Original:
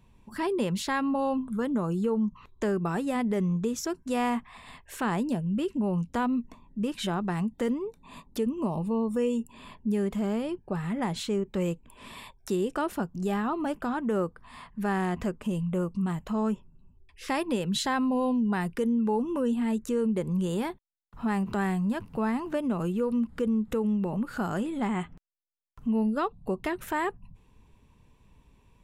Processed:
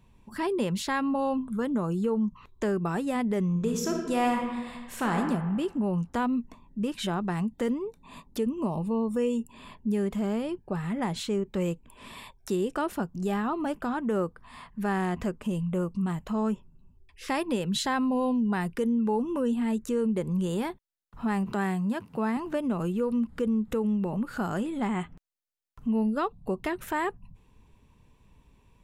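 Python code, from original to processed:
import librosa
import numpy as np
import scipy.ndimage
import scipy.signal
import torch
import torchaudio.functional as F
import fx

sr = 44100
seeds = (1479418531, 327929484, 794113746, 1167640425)

y = fx.reverb_throw(x, sr, start_s=3.5, length_s=1.67, rt60_s=1.4, drr_db=1.5)
y = fx.highpass(y, sr, hz=130.0, slope=12, at=(21.51, 22.37))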